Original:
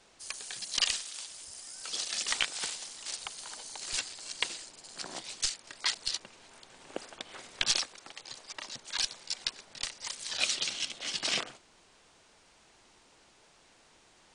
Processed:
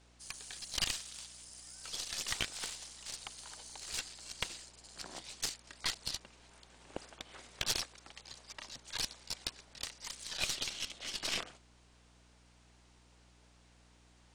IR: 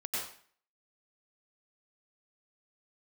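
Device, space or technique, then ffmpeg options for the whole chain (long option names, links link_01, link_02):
valve amplifier with mains hum: -af "aeval=exprs='(tanh(11.2*val(0)+0.8)-tanh(0.8))/11.2':channel_layout=same,aeval=exprs='val(0)+0.000708*(sin(2*PI*60*n/s)+sin(2*PI*2*60*n/s)/2+sin(2*PI*3*60*n/s)/3+sin(2*PI*4*60*n/s)/4+sin(2*PI*5*60*n/s)/5)':channel_layout=same,volume=-1dB"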